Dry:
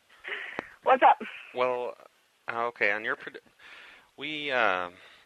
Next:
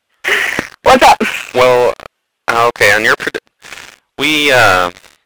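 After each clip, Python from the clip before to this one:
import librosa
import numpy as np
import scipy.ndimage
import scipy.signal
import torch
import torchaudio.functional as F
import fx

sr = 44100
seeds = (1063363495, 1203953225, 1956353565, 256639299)

y = fx.leveller(x, sr, passes=5)
y = y * 10.0 ** (6.5 / 20.0)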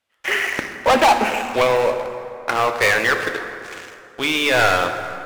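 y = fx.rev_plate(x, sr, seeds[0], rt60_s=2.8, hf_ratio=0.55, predelay_ms=0, drr_db=6.0)
y = y * 10.0 ** (-8.5 / 20.0)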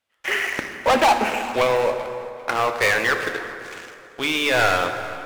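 y = fx.echo_feedback(x, sr, ms=391, feedback_pct=35, wet_db=-19.5)
y = y * 10.0 ** (-2.5 / 20.0)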